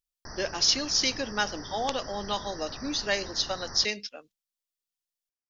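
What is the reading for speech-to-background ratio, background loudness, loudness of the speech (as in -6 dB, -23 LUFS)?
14.0 dB, -42.0 LUFS, -28.0 LUFS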